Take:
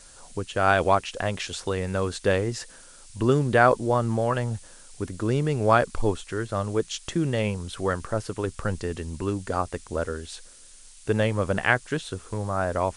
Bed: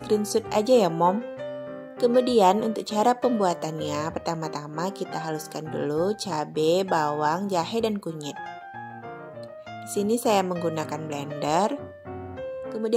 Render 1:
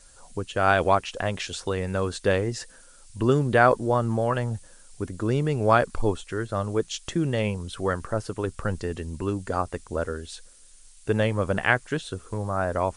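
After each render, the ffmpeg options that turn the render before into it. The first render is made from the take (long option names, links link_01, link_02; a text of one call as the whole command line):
ffmpeg -i in.wav -af "afftdn=noise_reduction=6:noise_floor=-49" out.wav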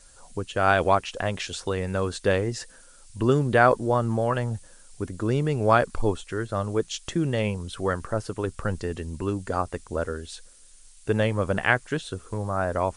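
ffmpeg -i in.wav -af anull out.wav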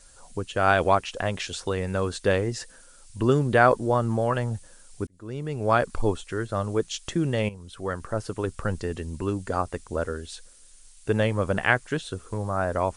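ffmpeg -i in.wav -filter_complex "[0:a]asplit=3[link_01][link_02][link_03];[link_01]atrim=end=5.07,asetpts=PTS-STARTPTS,afade=type=out:start_time=5.066:duration=0.004:curve=hsin[link_04];[link_02]atrim=start=5.07:end=7.49,asetpts=PTS-STARTPTS,afade=type=in:duration=0.86,afade=type=out:start_time=2.416:duration=0.004:curve=hsin:silence=0.223872[link_05];[link_03]atrim=start=7.49,asetpts=PTS-STARTPTS,afade=type=in:duration=0.8:silence=0.223872[link_06];[link_04][link_05][link_06]concat=n=3:v=0:a=1" out.wav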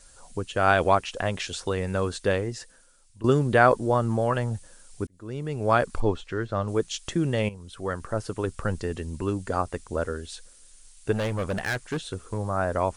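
ffmpeg -i in.wav -filter_complex "[0:a]asettb=1/sr,asplit=3[link_01][link_02][link_03];[link_01]atrim=end=6.004[link_04];[link_02]atrim=start=6:end=6.68,asetpts=PTS-STARTPTS,afade=type=in:duration=0.004:curve=qsin,afade=type=out:start_time=0.676:duration=0.004:curve=qsin,lowpass=4600[link_05];[link_03]atrim=start=6.676[link_06];[link_04][link_05]acrossfade=duration=0.004:curve1=hsin:curve2=qsin[link_07];[link_07][link_06]acrossfade=duration=0.004:curve1=qsin:curve2=hsin,asplit=3[link_08][link_09][link_10];[link_08]afade=type=out:start_time=11.11:duration=0.02[link_11];[link_09]volume=23.5dB,asoftclip=hard,volume=-23.5dB,afade=type=in:start_time=11.11:duration=0.02,afade=type=out:start_time=12.19:duration=0.02[link_12];[link_10]afade=type=in:start_time=12.19:duration=0.02[link_13];[link_11][link_12][link_13]amix=inputs=3:normalize=0,asplit=2[link_14][link_15];[link_14]atrim=end=3.24,asetpts=PTS-STARTPTS,afade=type=out:start_time=2.04:duration=1.2:silence=0.177828[link_16];[link_15]atrim=start=3.24,asetpts=PTS-STARTPTS,afade=type=in:duration=0.004:curve=hsin:silence=0.177828[link_17];[link_16][link_17]concat=n=2:v=0:a=1" out.wav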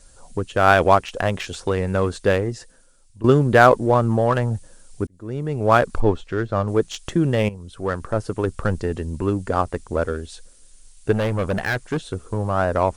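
ffmpeg -i in.wav -filter_complex "[0:a]asplit=2[link_01][link_02];[link_02]adynamicsmooth=sensitivity=4:basefreq=880,volume=0dB[link_03];[link_01][link_03]amix=inputs=2:normalize=0,asoftclip=type=hard:threshold=-2dB" out.wav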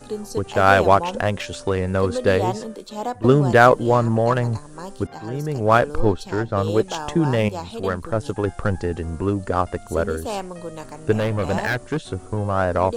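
ffmpeg -i in.wav -i bed.wav -filter_complex "[1:a]volume=-6.5dB[link_01];[0:a][link_01]amix=inputs=2:normalize=0" out.wav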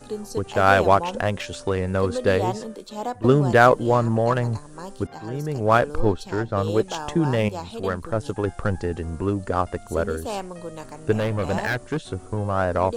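ffmpeg -i in.wav -af "volume=-2dB" out.wav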